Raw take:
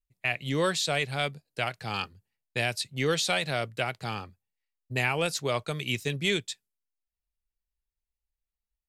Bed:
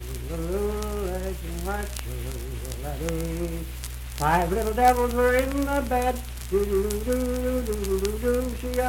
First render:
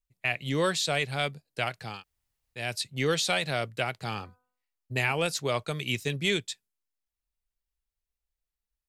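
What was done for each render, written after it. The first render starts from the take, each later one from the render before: 1.92–2.63 room tone, crossfade 0.24 s; 4.04–5.12 de-hum 249.5 Hz, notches 6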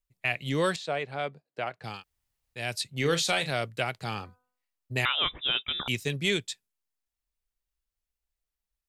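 0.76–1.84 band-pass 610 Hz, Q 0.56; 2.98–3.52 doubler 36 ms -10 dB; 5.05–5.88 inverted band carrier 3700 Hz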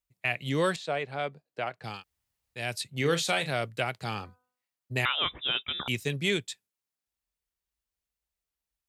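HPF 52 Hz; dynamic EQ 5100 Hz, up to -4 dB, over -40 dBFS, Q 1.1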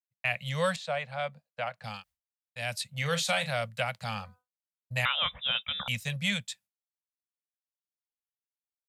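expander -52 dBFS; Chebyshev band-stop 220–520 Hz, order 3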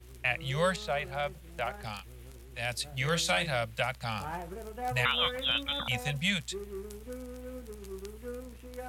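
add bed -17 dB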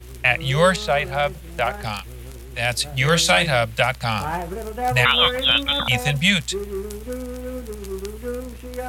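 gain +12 dB; limiter -3 dBFS, peak gain reduction 2 dB

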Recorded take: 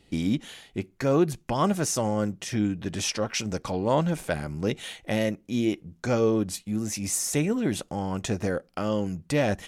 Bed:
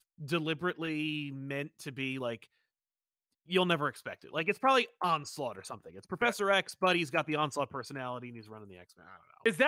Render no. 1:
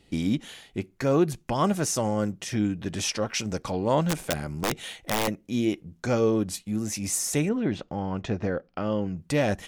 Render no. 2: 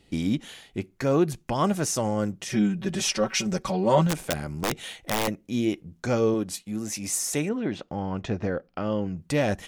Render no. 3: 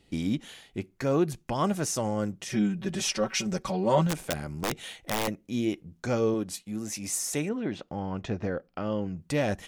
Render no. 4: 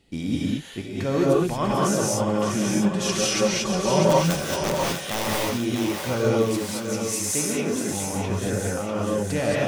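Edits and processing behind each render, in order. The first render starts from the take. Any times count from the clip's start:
4.05–5.28 wrapped overs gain 18 dB; 7.49–9.17 air absorption 200 m
2.49–4.07 comb 5.3 ms, depth 95%; 6.34–7.91 low shelf 120 Hz -11 dB
gain -3 dB
thinning echo 0.647 s, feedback 60%, high-pass 420 Hz, level -6 dB; non-linear reverb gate 0.25 s rising, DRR -4.5 dB

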